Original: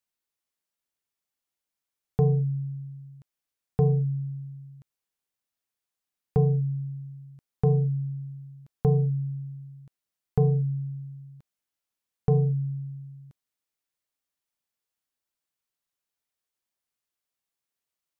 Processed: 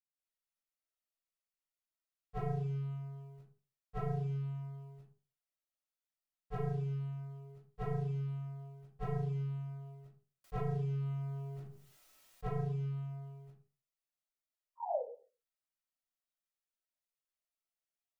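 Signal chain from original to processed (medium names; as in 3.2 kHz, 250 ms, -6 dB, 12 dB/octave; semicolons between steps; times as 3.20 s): peaking EQ 100 Hz -3 dB 0.56 oct; band-stop 460 Hz, Q 12; waveshaping leveller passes 2; peak limiter -19.5 dBFS, peak gain reduction 5 dB; flange 0.22 Hz, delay 0.9 ms, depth 1.9 ms, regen +84%; 14.61–14.86 s: painted sound fall 450–1000 Hz -36 dBFS; reverberation RT60 0.40 s, pre-delay 144 ms; 10.44–12.49 s: level flattener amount 50%; trim +4.5 dB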